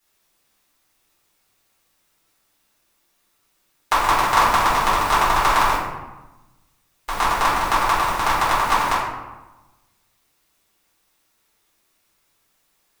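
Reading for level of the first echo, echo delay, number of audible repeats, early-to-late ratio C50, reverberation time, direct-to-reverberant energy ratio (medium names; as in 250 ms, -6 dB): no echo, no echo, no echo, 0.0 dB, 1.1 s, -10.0 dB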